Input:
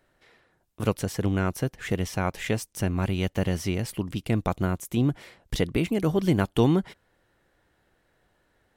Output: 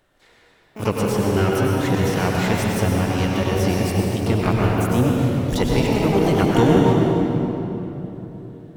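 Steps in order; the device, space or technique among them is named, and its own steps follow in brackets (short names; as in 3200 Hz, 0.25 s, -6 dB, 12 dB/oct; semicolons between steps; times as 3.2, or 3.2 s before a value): 5.74–6.43 HPF 150 Hz 6 dB/oct; shimmer-style reverb (harmoniser +12 st -7 dB; reverb RT60 3.5 s, pre-delay 90 ms, DRR -2.5 dB); gain +2.5 dB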